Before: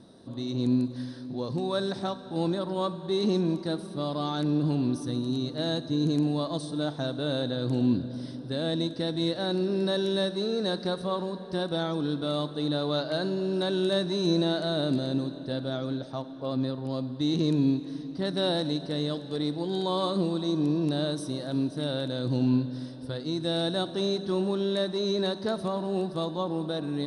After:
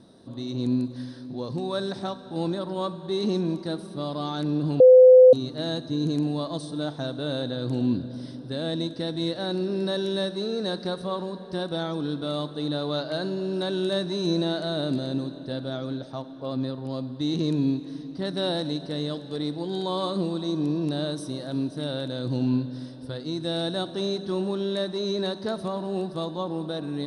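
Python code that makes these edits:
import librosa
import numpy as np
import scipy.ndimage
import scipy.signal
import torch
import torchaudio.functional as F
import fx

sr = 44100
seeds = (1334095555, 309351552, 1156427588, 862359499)

y = fx.edit(x, sr, fx.bleep(start_s=4.8, length_s=0.53, hz=510.0, db=-8.0), tone=tone)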